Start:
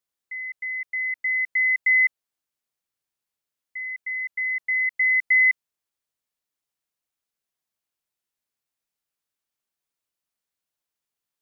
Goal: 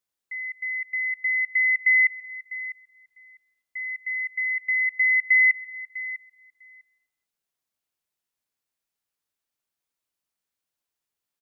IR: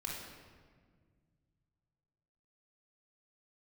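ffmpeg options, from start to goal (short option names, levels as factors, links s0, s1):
-filter_complex "[0:a]asplit=2[s0][s1];[s1]adelay=650,lowpass=f=1900:p=1,volume=0.251,asplit=2[s2][s3];[s3]adelay=650,lowpass=f=1900:p=1,volume=0.17[s4];[s0][s2][s4]amix=inputs=3:normalize=0,asplit=2[s5][s6];[1:a]atrim=start_sample=2205,afade=t=out:st=0.37:d=0.01,atrim=end_sample=16758,adelay=129[s7];[s6][s7]afir=irnorm=-1:irlink=0,volume=0.0794[s8];[s5][s8]amix=inputs=2:normalize=0"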